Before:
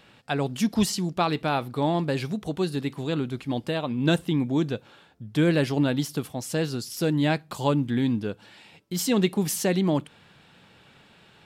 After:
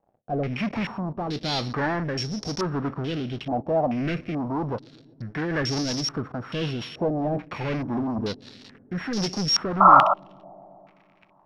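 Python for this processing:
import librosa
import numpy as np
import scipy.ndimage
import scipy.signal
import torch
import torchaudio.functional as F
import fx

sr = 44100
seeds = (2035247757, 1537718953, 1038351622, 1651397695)

p1 = np.r_[np.sort(x[:len(x) // 8 * 8].reshape(-1, 8), axis=1).ravel(), x[len(x) // 8 * 8:]]
p2 = fx.hum_notches(p1, sr, base_hz=60, count=5, at=(7.18, 8.25))
p3 = fx.leveller(p2, sr, passes=5)
p4 = np.clip(10.0 ** (22.0 / 20.0) * p3, -1.0, 1.0) / 10.0 ** (22.0 / 20.0)
p5 = p3 + F.gain(torch.from_numpy(p4), -5.0).numpy()
p6 = fx.rotary_switch(p5, sr, hz=1.0, then_hz=5.5, switch_at_s=4.6)
p7 = fx.spec_paint(p6, sr, seeds[0], shape='noise', start_s=9.8, length_s=0.34, low_hz=560.0, high_hz=1400.0, level_db=-6.0)
p8 = p7 + fx.echo_wet_lowpass(p7, sr, ms=126, feedback_pct=80, hz=560.0, wet_db=-24, dry=0)
p9 = fx.filter_held_lowpass(p8, sr, hz=2.3, low_hz=730.0, high_hz=5500.0)
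y = F.gain(torch.from_numpy(p9), -14.0).numpy()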